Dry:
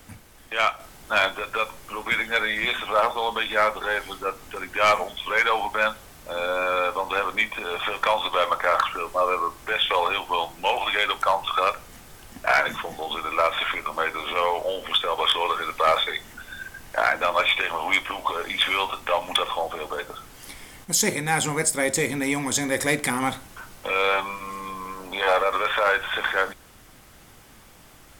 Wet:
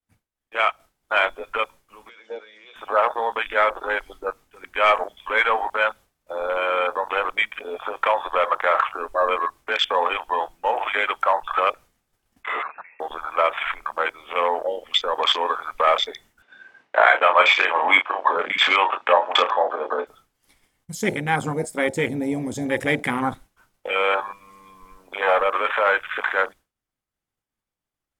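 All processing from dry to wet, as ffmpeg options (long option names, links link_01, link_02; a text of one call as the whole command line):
ffmpeg -i in.wav -filter_complex "[0:a]asettb=1/sr,asplit=3[link_01][link_02][link_03];[link_01]atrim=end=2.094[link_04];[link_02]atrim=start=2.09:end=2.76,asetpts=PTS-STARTPTS,afade=type=in:duration=0.004:curve=qsin,afade=type=out:start_time=0.666:duration=0.004:curve=qsin,acompressor=threshold=-27dB:ratio=16:attack=3.2:release=140:knee=1:detection=peak,highpass=frequency=230:width=0.5412,highpass=frequency=230:width=1.3066,equalizer=frequency=250:width_type=q:width=4:gain=-8,equalizer=frequency=480:width_type=q:width=4:gain=9,equalizer=frequency=760:width_type=q:width=4:gain=-4,equalizer=frequency=1900:width_type=q:width=4:gain=-6,equalizer=frequency=2900:width_type=q:width=4:gain=4,equalizer=frequency=5700:width_type=q:width=4:gain=5,lowpass=frequency=6600:width=0.5412,lowpass=frequency=6600:width=1.3066[link_05];[link_03]atrim=start=2.756[link_06];[link_04][link_05]acrossfade=duration=0.004:curve1=hsin:curve2=qsin[link_07];[link_07][link_06]acrossfade=duration=0.004:curve1=qsin:curve2=hsin,asettb=1/sr,asplit=3[link_08][link_09][link_10];[link_08]atrim=end=12.434[link_11];[link_09]atrim=start=12.43:end=13,asetpts=PTS-STARTPTS,afade=type=in:duration=0.004:curve=qsin,afade=type=out:start_time=0.566:duration=0.004:curve=qsin,asoftclip=type=hard:threshold=-24.5dB,lowpass=frequency=2300:width_type=q:width=0.5098,lowpass=frequency=2300:width_type=q:width=0.6013,lowpass=frequency=2300:width_type=q:width=0.9,lowpass=frequency=2300:width_type=q:width=2.563,afreqshift=-2700,highpass=frequency=120:poles=1[link_12];[link_10]atrim=start=12.996[link_13];[link_11][link_12]acrossfade=duration=0.004:curve1=hsin:curve2=qsin[link_14];[link_14][link_13]acrossfade=duration=0.004:curve1=qsin:curve2=hsin,asettb=1/sr,asplit=3[link_15][link_16][link_17];[link_15]atrim=end=16.424[link_18];[link_16]atrim=start=16.42:end=20.07,asetpts=PTS-STARTPTS,afade=type=in:duration=0.004:curve=qsin,afade=type=out:start_time=3.646:duration=0.004:curve=qsin,acontrast=23,highpass=310,lowpass=3000,asplit=2[link_19][link_20];[link_20]adelay=32,volume=-7dB[link_21];[link_19][link_21]amix=inputs=2:normalize=0,atrim=end_sample=160965[link_22];[link_17]atrim=start=20.066[link_23];[link_18][link_22]acrossfade=duration=0.004:curve1=hsin:curve2=qsin[link_24];[link_24][link_23]acrossfade=duration=0.004:curve1=qsin:curve2=hsin,agate=range=-33dB:threshold=-35dB:ratio=3:detection=peak,afwtdn=0.0562,volume=2dB" out.wav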